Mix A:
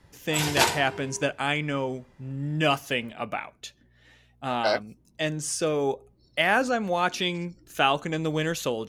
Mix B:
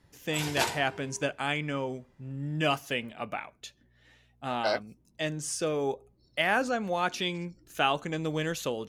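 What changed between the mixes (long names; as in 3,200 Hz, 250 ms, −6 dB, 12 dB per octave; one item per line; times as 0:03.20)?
speech −4.0 dB
background −7.5 dB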